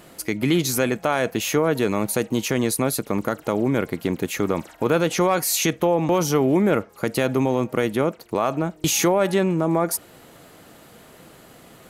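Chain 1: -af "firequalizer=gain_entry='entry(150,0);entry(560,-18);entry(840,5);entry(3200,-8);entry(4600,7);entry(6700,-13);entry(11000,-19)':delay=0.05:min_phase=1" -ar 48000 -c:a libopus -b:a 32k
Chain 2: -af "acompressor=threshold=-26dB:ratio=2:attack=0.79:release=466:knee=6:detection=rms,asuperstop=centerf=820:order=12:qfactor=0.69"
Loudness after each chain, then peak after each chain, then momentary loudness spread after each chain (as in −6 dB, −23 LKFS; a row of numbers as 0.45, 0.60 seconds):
−26.0, −31.0 LKFS; −10.0, −16.5 dBFS; 6, 21 LU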